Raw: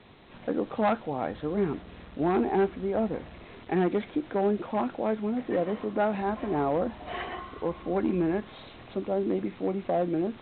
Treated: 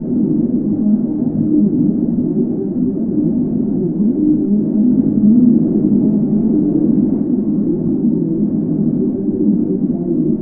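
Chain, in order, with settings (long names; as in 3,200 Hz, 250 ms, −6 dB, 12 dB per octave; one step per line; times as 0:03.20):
compressor on every frequency bin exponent 0.4
fuzz pedal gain 44 dB, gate −52 dBFS
low-pass with resonance 280 Hz, resonance Q 3.4
parametric band 180 Hz +10 dB 1 octave
rectangular room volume 380 cubic metres, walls furnished, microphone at 7.3 metres
flanger 1.4 Hz, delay 0.7 ms, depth 6.4 ms, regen +68%
low-shelf EQ 63 Hz −11 dB
0:04.82–0:07.22: feedback echo with a swinging delay time 92 ms, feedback 72%, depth 120 cents, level −4.5 dB
level −17.5 dB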